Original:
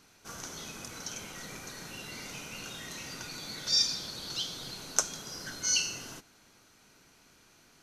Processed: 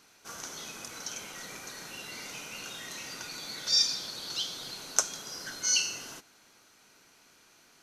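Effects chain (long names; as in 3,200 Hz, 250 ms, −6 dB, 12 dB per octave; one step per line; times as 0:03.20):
low-shelf EQ 210 Hz −11.5 dB
level +1.5 dB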